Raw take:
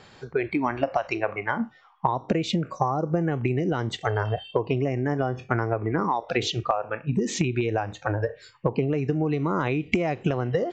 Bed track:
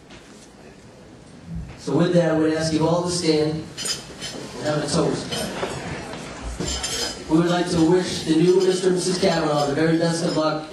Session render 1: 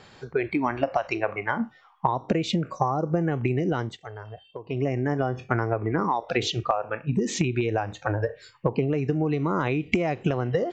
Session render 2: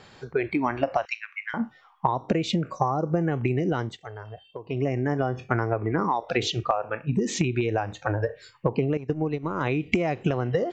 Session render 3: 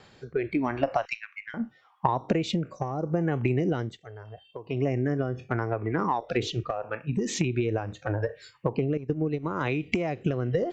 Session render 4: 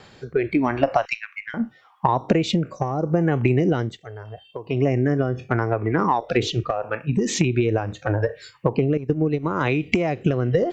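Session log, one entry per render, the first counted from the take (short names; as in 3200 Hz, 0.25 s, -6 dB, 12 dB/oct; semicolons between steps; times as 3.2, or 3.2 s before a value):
3.79–4.83 dip -14 dB, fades 0.18 s
1.05–1.54 steep high-pass 1700 Hz; 8.97–9.61 gate -25 dBFS, range -13 dB
one diode to ground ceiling -7.5 dBFS; rotary speaker horn 0.8 Hz
gain +6.5 dB; limiter -3 dBFS, peak gain reduction 3 dB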